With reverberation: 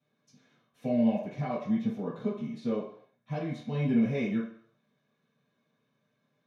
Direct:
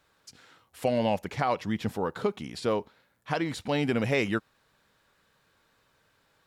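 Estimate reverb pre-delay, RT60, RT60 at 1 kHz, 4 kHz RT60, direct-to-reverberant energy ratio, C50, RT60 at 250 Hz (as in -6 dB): 3 ms, 0.60 s, 0.60 s, 0.60 s, -10.5 dB, 4.0 dB, 0.40 s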